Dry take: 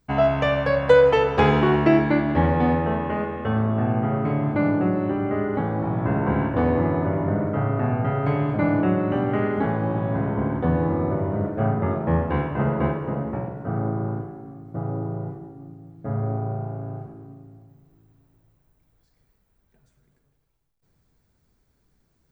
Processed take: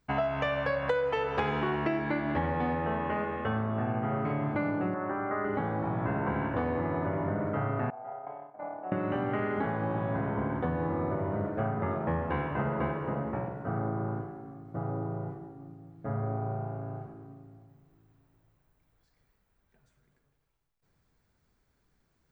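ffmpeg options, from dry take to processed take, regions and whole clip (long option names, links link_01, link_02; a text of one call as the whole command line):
ffmpeg -i in.wav -filter_complex "[0:a]asettb=1/sr,asplit=3[link_01][link_02][link_03];[link_01]atrim=end=4.944[link_04];[link_02]atrim=start=4.94:end=5.45,asetpts=PTS-STARTPTS,afade=type=in:duration=0.004:curve=qsin,afade=type=out:start_time=0.506:duration=0.004:curve=qsin,lowpass=frequency=1600:width=0.5412,lowpass=frequency=1600:width=1.3066,tiltshelf=frequency=680:gain=-9[link_05];[link_03]atrim=start=5.446[link_06];[link_04][link_05]acrossfade=duration=0.004:curve1=hsin:curve2=qsin[link_07];[link_07][link_06]acrossfade=duration=0.004:curve1=qsin:curve2=hsin,asettb=1/sr,asplit=3[link_08][link_09][link_10];[link_08]atrim=end=7.904[link_11];[link_09]atrim=start=7.9:end=8.92,asetpts=PTS-STARTPTS,afade=type=in:duration=0.004:curve=qsin,afade=type=out:start_time=1.016:duration=0.004:curve=qsin,bandpass=frequency=740:width_type=q:width=4.2,agate=range=-33dB:threshold=-29dB:ratio=3:release=100:detection=peak[link_12];[link_10]atrim=start=8.916[link_13];[link_11][link_12]acrossfade=duration=0.004:curve1=hsin:curve2=qsin[link_14];[link_14][link_13]acrossfade=duration=0.004:curve1=qsin:curve2=hsin,equalizer=frequency=1600:width=0.43:gain=6,acompressor=threshold=-20dB:ratio=6,volume=-6.5dB" out.wav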